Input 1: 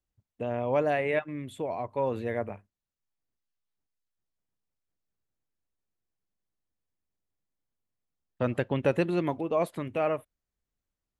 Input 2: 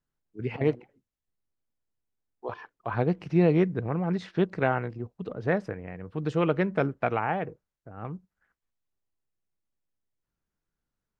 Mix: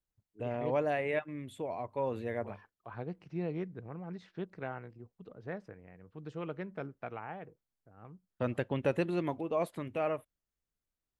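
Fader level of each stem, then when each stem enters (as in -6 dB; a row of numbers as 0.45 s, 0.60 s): -5.0 dB, -15.0 dB; 0.00 s, 0.00 s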